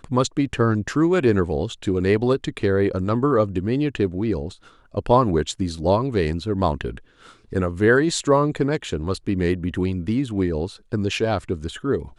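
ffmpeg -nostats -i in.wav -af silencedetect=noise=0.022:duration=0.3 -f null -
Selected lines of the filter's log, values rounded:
silence_start: 4.54
silence_end: 4.95 | silence_duration: 0.41
silence_start: 6.98
silence_end: 7.52 | silence_duration: 0.55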